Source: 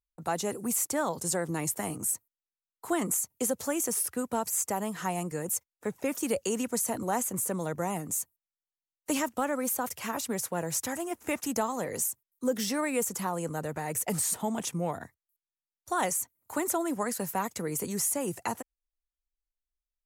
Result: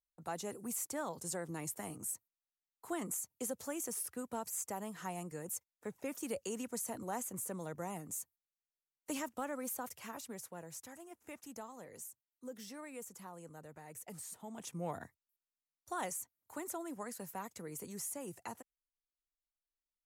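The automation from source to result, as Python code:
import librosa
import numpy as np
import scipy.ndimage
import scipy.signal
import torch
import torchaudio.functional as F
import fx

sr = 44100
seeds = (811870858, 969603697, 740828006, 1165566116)

y = fx.gain(x, sr, db=fx.line((9.78, -10.5), (10.89, -18.5), (14.41, -18.5), (14.97, -6.0), (16.52, -13.0)))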